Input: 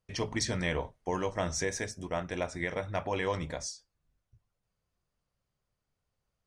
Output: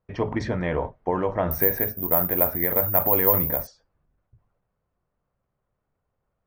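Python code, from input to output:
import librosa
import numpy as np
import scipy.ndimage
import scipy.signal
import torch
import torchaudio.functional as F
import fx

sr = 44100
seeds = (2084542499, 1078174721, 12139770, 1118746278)

y = scipy.signal.sosfilt(scipy.signal.butter(2, 1300.0, 'lowpass', fs=sr, output='sos'), x)
y = fx.low_shelf(y, sr, hz=210.0, db=-4.5)
y = fx.transient(y, sr, attack_db=2, sustain_db=6)
y = fx.resample_bad(y, sr, factor=3, down='filtered', up='zero_stuff', at=(1.51, 3.67))
y = F.gain(torch.from_numpy(y), 8.0).numpy()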